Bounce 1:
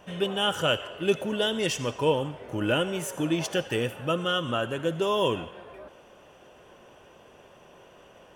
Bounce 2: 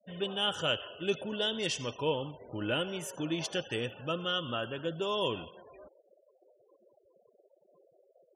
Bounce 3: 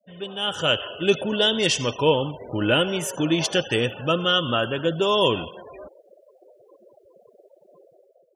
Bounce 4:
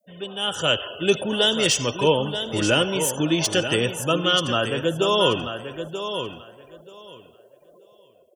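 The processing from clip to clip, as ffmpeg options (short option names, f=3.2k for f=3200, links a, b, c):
-af "adynamicequalizer=threshold=0.00562:dfrequency=4100:dqfactor=1.3:tfrequency=4100:tqfactor=1.3:attack=5:release=100:ratio=0.375:range=3.5:mode=boostabove:tftype=bell,afftfilt=real='re*gte(hypot(re,im),0.01)':imag='im*gte(hypot(re,im),0.01)':win_size=1024:overlap=0.75,volume=-7.5dB"
-af "dynaudnorm=f=170:g=7:m=12dB"
-filter_complex "[0:a]aecho=1:1:933|1866|2799:0.355|0.0603|0.0103,acrossover=split=310|1000|6800[a][b][c][d];[d]aeval=exprs='0.0944*sin(PI/2*2*val(0)/0.0944)':c=same[e];[a][b][c][e]amix=inputs=4:normalize=0"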